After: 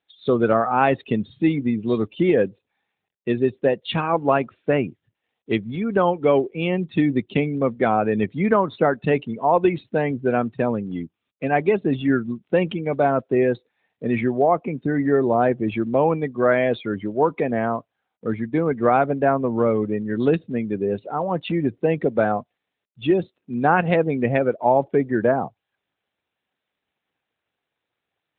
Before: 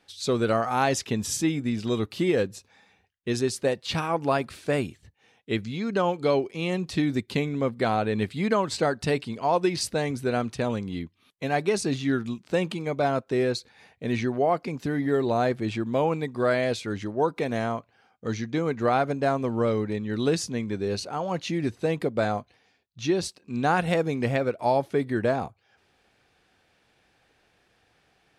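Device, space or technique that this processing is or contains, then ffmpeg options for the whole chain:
mobile call with aggressive noise cancelling: -af "highpass=130,afftdn=nr=21:nf=-36,volume=6dB" -ar 8000 -c:a libopencore_amrnb -b:a 12200

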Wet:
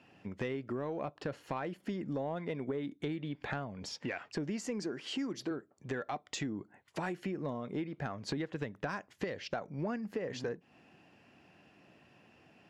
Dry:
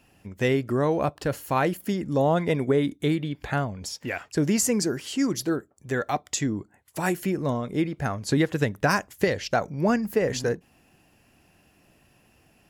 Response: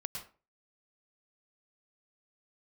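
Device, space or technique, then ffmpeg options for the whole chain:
AM radio: -filter_complex "[0:a]asettb=1/sr,asplit=3[a][b][c];[a]atrim=end=4.614[d];[b]atrim=start=4.61:end=5.51,asetpts=PTS-STARTPTS,afade=t=in:d=0.004:c=qsin,afade=t=out:st=0.896:d=0.004:c=qsin,highpass=160[e];[c]atrim=start=5.506[f];[d][e]acrossfade=d=0.004:c1=hsin:c2=qsin[g];[g][f]acrossfade=d=0.004:c1=qsin:c2=hsin,highpass=140,lowpass=3.8k,acompressor=threshold=-34dB:ratio=6,asoftclip=type=tanh:threshold=-24dB"

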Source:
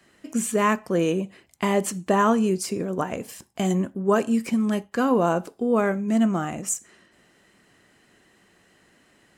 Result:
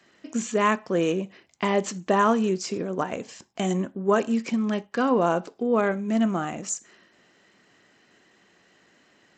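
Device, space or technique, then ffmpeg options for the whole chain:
Bluetooth headset: -af "highpass=f=190:p=1,aresample=16000,aresample=44100" -ar 32000 -c:a sbc -b:a 64k

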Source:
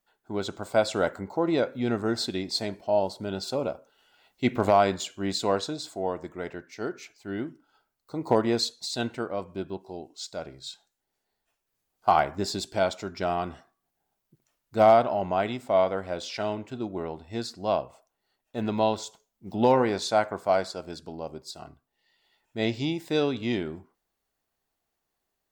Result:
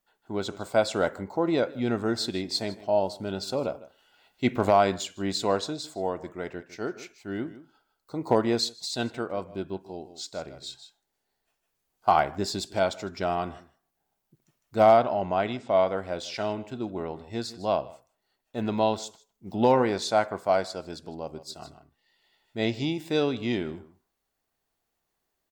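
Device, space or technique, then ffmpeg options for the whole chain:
ducked delay: -filter_complex "[0:a]asettb=1/sr,asplit=3[a][b][c];[a]atrim=end=14.974[d];[b]atrim=start=14.97:end=15.87,asetpts=PTS-STARTPTS,afade=t=in:d=0.004:c=qsin,afade=t=out:st=0.896:d=0.004:c=qsin,lowpass=f=6.9k:w=0.5412,lowpass=f=6.9k:w=1.3066[e];[c]atrim=start=15.866[f];[d][e]acrossfade=d=0.004:c1=hsin:c2=qsin[g];[g][f]acrossfade=d=0.004:c1=qsin:c2=hsin,asplit=3[h][i][j];[i]adelay=155,volume=-4.5dB[k];[j]apad=whole_len=1131902[l];[k][l]sidechaincompress=threshold=-38dB:ratio=10:attack=11:release=1180[m];[h][m]amix=inputs=2:normalize=0"

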